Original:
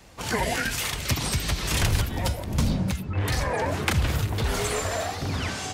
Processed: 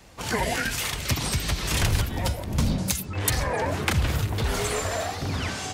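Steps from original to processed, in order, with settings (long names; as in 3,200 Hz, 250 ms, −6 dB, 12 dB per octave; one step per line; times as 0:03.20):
0:02.78–0:03.30: bass and treble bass −4 dB, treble +15 dB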